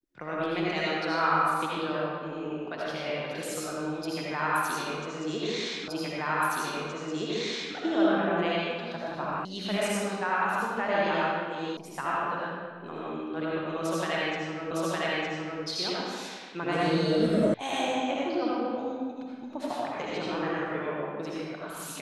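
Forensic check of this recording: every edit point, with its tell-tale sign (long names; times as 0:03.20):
0:05.88: the same again, the last 1.87 s
0:09.45: cut off before it has died away
0:11.77: cut off before it has died away
0:14.71: the same again, the last 0.91 s
0:17.54: cut off before it has died away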